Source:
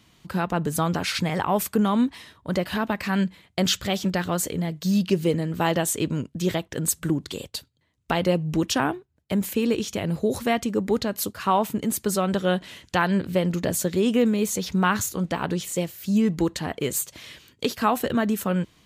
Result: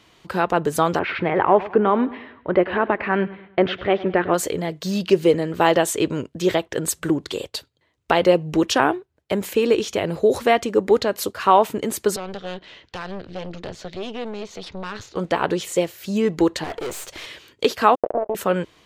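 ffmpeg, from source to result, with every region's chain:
ffmpeg -i in.wav -filter_complex "[0:a]asettb=1/sr,asplit=3[link_01][link_02][link_03];[link_01]atrim=end=0.994[link_04];[link_02]atrim=start=0.99:end=4.34,asetpts=PTS-STARTPTS,afade=type=in:duration=0.004:curve=qsin,afade=type=out:start_time=3.346:duration=0.004:curve=qsin,lowpass=frequency=2500:width=0.5412,lowpass=frequency=2500:width=1.3066,equalizer=frequency=360:width_type=o:width=0.34:gain=5.5,aecho=1:1:102|204|306|408:0.133|0.0573|0.0247|0.0106,atrim=end_sample=147735[link_05];[link_03]atrim=start=4.336[link_06];[link_04][link_05]acrossfade=duration=0.004:curve1=hsin:curve2=qsin[link_07];[link_07][link_06]acrossfade=duration=0.004:curve1=qsin:curve2=hsin,asettb=1/sr,asplit=3[link_08][link_09][link_10];[link_08]atrim=end=12.164[link_11];[link_09]atrim=start=12.16:end=15.16,asetpts=PTS-STARTPTS,afade=type=in:duration=0.004:curve=qsin,afade=type=out:start_time=2.996:duration=0.004:curve=qsin,lowpass=frequency=4800:width=0.5412,lowpass=frequency=4800:width=1.3066,acrossover=split=190|3000[link_12][link_13][link_14];[link_13]acompressor=threshold=-49dB:ratio=1.5:attack=3.2:release=140:knee=2.83:detection=peak[link_15];[link_12][link_15][link_14]amix=inputs=3:normalize=0,aeval=exprs='(tanh(28.2*val(0)+0.75)-tanh(0.75))/28.2':channel_layout=same[link_16];[link_10]atrim=start=15.156[link_17];[link_11][link_16]acrossfade=duration=0.004:curve1=hsin:curve2=qsin[link_18];[link_18][link_17]acrossfade=duration=0.004:curve1=qsin:curve2=hsin,asettb=1/sr,asplit=3[link_19][link_20][link_21];[link_19]atrim=end=16.644[link_22];[link_20]atrim=start=16.64:end=17.26,asetpts=PTS-STARTPTS,afade=type=in:duration=0.004:curve=qsin,afade=type=out:start_time=0.616:duration=0.004:curve=qsin,acontrast=76,aeval=exprs='(tanh(44.7*val(0)+0.65)-tanh(0.65))/44.7':channel_layout=same[link_23];[link_21]atrim=start=17.256[link_24];[link_22][link_23]acrossfade=duration=0.004:curve1=hsin:curve2=qsin[link_25];[link_25][link_24]acrossfade=duration=0.004:curve1=qsin:curve2=hsin,asettb=1/sr,asplit=3[link_26][link_27][link_28];[link_26]atrim=end=17.954[link_29];[link_27]atrim=start=17.95:end=18.35,asetpts=PTS-STARTPTS,afade=type=in:duration=0.004:curve=qsin,afade=type=out:start_time=0.396:duration=0.004:curve=qsin,acrusher=bits=2:mix=0:aa=0.5,acompressor=threshold=-26dB:ratio=6:attack=3.2:release=140:knee=1:detection=peak,lowpass=frequency=610:width_type=q:width=3.9[link_30];[link_28]atrim=start=18.346[link_31];[link_29][link_30]acrossfade=duration=0.004:curve1=hsin:curve2=qsin[link_32];[link_32][link_31]acrossfade=duration=0.004:curve1=qsin:curve2=hsin,lowpass=frequency=4000:poles=1,lowshelf=frequency=290:width_type=q:width=1.5:gain=-7.5,volume=6.5dB" out.wav

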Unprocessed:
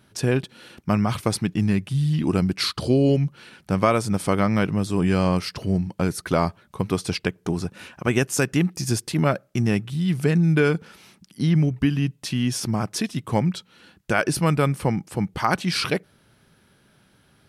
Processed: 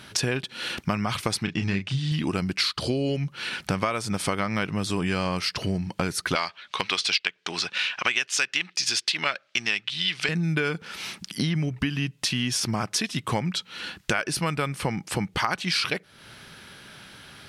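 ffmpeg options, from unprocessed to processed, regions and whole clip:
ffmpeg -i in.wav -filter_complex "[0:a]asettb=1/sr,asplit=3[link_01][link_02][link_03];[link_01]atrim=end=1.434[link_04];[link_02]atrim=start=1.43:end=2.12,asetpts=PTS-STARTPTS,afade=type=in:duration=0.004:curve=qsin,afade=type=out:start_time=0.686:duration=0.004:curve=qsin,lowpass=frequency=7100:width=0.5412,lowpass=frequency=7100:width=1.3066,asplit=2[link_05][link_06];[link_06]adelay=31,volume=-7dB[link_07];[link_05][link_07]amix=inputs=2:normalize=0,atrim=end_sample=30429[link_08];[link_03]atrim=start=2.116[link_09];[link_04][link_08]acrossfade=duration=0.004:curve1=hsin:curve2=qsin[link_10];[link_10][link_09]acrossfade=duration=0.004:curve1=qsin:curve2=hsin,asettb=1/sr,asplit=3[link_11][link_12][link_13];[link_11]atrim=end=6.354[link_14];[link_12]atrim=start=6.35:end=10.29,asetpts=PTS-STARTPTS,afade=type=in:duration=0.004:curve=qsin,afade=type=out:start_time=3.936:duration=0.004:curve=qsin,adynamicsmooth=sensitivity=5.5:basefreq=6400,highpass=frequency=680:poles=1,equalizer=frequency=3400:width_type=o:width=2.3:gain=13.5[link_15];[link_13]atrim=start=10.286[link_16];[link_14][link_15]acrossfade=duration=0.004:curve1=hsin:curve2=qsin[link_17];[link_17][link_16]acrossfade=duration=0.004:curve1=qsin:curve2=hsin,equalizer=frequency=3100:width=0.32:gain=11,acompressor=threshold=-32dB:ratio=5,volume=7dB" out.wav

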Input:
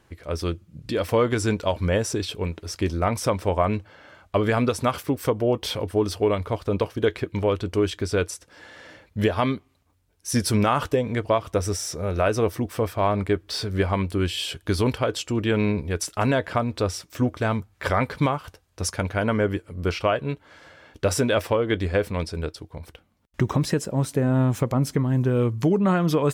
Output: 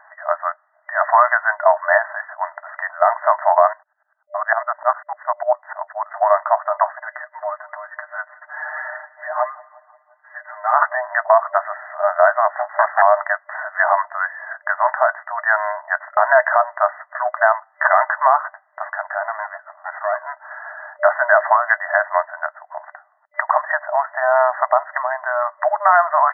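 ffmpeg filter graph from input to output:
ffmpeg -i in.wav -filter_complex "[0:a]asettb=1/sr,asplit=3[link_01][link_02][link_03];[link_01]atrim=end=3.734[link_04];[link_02]atrim=start=3.73:end=6.14,asetpts=PTS-STARTPTS,afade=type=in:duration=0.004:curve=qsin,afade=type=out:start_time=2.406:duration=0.004:curve=qsin,agate=range=-27dB:threshold=-41dB:ratio=16:release=100:detection=peak,aeval=exprs='val(0)*pow(10,-22*if(lt(mod(-10*n/s,1),2*abs(-10)/1000),1-mod(-10*n/s,1)/(2*abs(-10)/1000),(mod(-10*n/s,1)-2*abs(-10)/1000)/(1-2*abs(-10)/1000))/20)':channel_layout=same[link_05];[link_03]atrim=start=6.136[link_06];[link_04][link_05]acrossfade=duration=0.004:curve1=hsin:curve2=qsin[link_07];[link_07][link_06]acrossfade=duration=0.004:curve1=qsin:curve2=hsin,asettb=1/sr,asplit=3[link_08][link_09][link_10];[link_08]atrim=end=6.984[link_11];[link_09]atrim=start=6.98:end=10.74,asetpts=PTS-STARTPTS,afade=type=in:duration=0.004:curve=qsin,afade=type=out:start_time=3.756:duration=0.004:curve=qsin,acompressor=threshold=-41dB:ratio=2.5:attack=3.2:release=140:knee=1:detection=peak,aecho=1:1:6.6:0.86,atrim=end_sample=165816,aecho=1:1:176|352|528|704:0.0794|0.0421|0.0223|0.0118,atrim=end_sample=165816[link_12];[link_10]atrim=start=10.736[link_13];[link_11][link_12]acrossfade=duration=0.004:curve1=hsin:curve2=qsin[link_14];[link_14][link_13]acrossfade=duration=0.004:curve1=qsin:curve2=hsin,asettb=1/sr,asplit=3[link_15][link_16][link_17];[link_15]atrim=end=12.494[link_18];[link_16]atrim=start=12.49:end=13.02,asetpts=PTS-STARTPTS,afade=type=in:duration=0.004:curve=qsin,afade=type=out:start_time=0.526:duration=0.004:curve=qsin,highpass=frequency=78:poles=1,equalizer=frequency=110:width_type=o:width=0.39:gain=11.5,aeval=exprs='abs(val(0))':channel_layout=same[link_19];[link_17]atrim=start=13.016[link_20];[link_18][link_19]acrossfade=duration=0.004:curve1=hsin:curve2=qsin[link_21];[link_21][link_20]acrossfade=duration=0.004:curve1=qsin:curve2=hsin,asettb=1/sr,asplit=3[link_22][link_23][link_24];[link_22]atrim=end=18.854[link_25];[link_23]atrim=start=18.85:end=20.2,asetpts=PTS-STARTPTS,afade=type=in:duration=0.004:curve=qsin,afade=type=out:start_time=1.346:duration=0.004:curve=qsin,acompressor=threshold=-28dB:ratio=6:attack=3.2:release=140:knee=1:detection=peak,aeval=exprs='clip(val(0),-1,0.00891)':channel_layout=same[link_26];[link_24]atrim=start=20.196[link_27];[link_25][link_26]acrossfade=duration=0.004:curve1=hsin:curve2=qsin[link_28];[link_28][link_27]acrossfade=duration=0.004:curve1=qsin:curve2=hsin,afftfilt=real='re*between(b*sr/4096,600,2000)':imag='im*between(b*sr/4096,600,2000)':win_size=4096:overlap=0.75,alimiter=level_in=18.5dB:limit=-1dB:release=50:level=0:latency=1,volume=-1dB" out.wav

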